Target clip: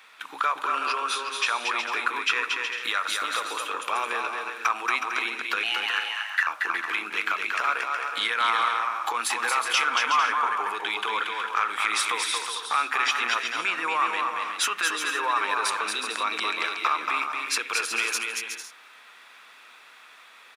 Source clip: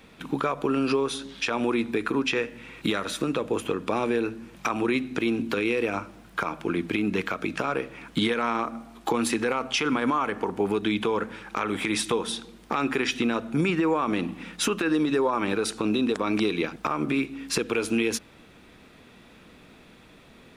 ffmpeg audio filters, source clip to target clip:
ffmpeg -i in.wav -filter_complex "[0:a]highpass=frequency=1200:width_type=q:width=1.5,asplit=2[link_01][link_02];[link_02]asoftclip=type=tanh:threshold=-22.5dB,volume=-11.5dB[link_03];[link_01][link_03]amix=inputs=2:normalize=0,asettb=1/sr,asplit=3[link_04][link_05][link_06];[link_04]atrim=end=5.634[link_07];[link_05]atrim=start=5.63:end=6.47,asetpts=PTS-STARTPTS,afade=type=in:duration=0.004:curve=qsin,afade=type=out:start_time=0.836:duration=0.004:curve=qsin,afreqshift=360[link_08];[link_06]atrim=start=6.466[link_09];[link_07][link_08]acrossfade=duration=0.004:curve1=hsin:curve2=qsin[link_10];[link_10][link_09]acrossfade=duration=0.004:curve1=qsin:curve2=hsin,aecho=1:1:230|368|450.8|500.5|530.3:0.631|0.398|0.251|0.158|0.1" out.wav

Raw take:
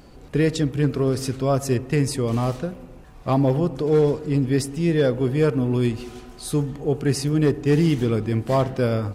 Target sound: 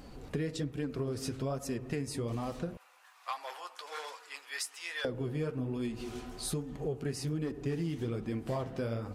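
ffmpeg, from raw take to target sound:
ffmpeg -i in.wav -filter_complex "[0:a]flanger=delay=3.7:depth=8.4:regen=-36:speed=1.2:shape=sinusoidal,asettb=1/sr,asplit=3[link_01][link_02][link_03];[link_01]atrim=end=2.774[link_04];[link_02]atrim=start=2.77:end=5.05,asetpts=PTS-STARTPTS,afade=type=in:duration=0.004:curve=qsin,afade=type=out:start_time=2.276:duration=0.004:curve=qsin,highpass=frequency=1000:width=0.5412,highpass=frequency=1000:width=1.3066[link_05];[link_03]atrim=start=5.046[link_06];[link_04][link_05]acrossfade=duration=0.004:curve1=hsin:curve2=qsin[link_07];[link_07][link_06]acrossfade=duration=0.004:curve1=qsin:curve2=hsin,acompressor=threshold=-34dB:ratio=5,volume=1dB" out.wav

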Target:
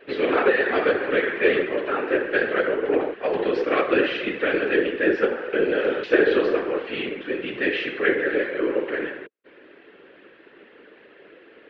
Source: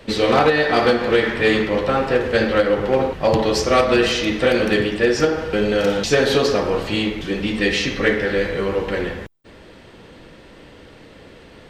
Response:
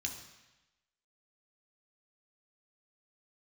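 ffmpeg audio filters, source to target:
-af "highpass=frequency=330:width=0.5412,highpass=frequency=330:width=1.3066,equalizer=frequency=400:width_type=q:width=4:gain=10,equalizer=frequency=590:width_type=q:width=4:gain=-6,equalizer=frequency=900:width_type=q:width=4:gain=-6,equalizer=frequency=1600:width_type=q:width=4:gain=7,equalizer=frequency=2600:width_type=q:width=4:gain=3,lowpass=frequency=3000:width=0.5412,lowpass=frequency=3000:width=1.3066,afftfilt=real='hypot(re,im)*cos(2*PI*random(0))':imag='hypot(re,im)*sin(2*PI*random(1))':win_size=512:overlap=0.75"

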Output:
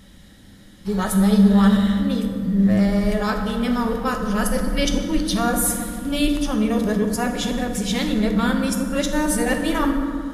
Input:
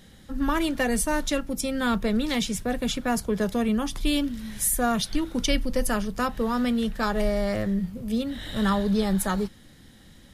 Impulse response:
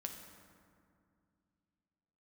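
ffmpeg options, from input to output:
-filter_complex "[0:a]areverse,acontrast=47[link_01];[1:a]atrim=start_sample=2205[link_02];[link_01][link_02]afir=irnorm=-1:irlink=0"

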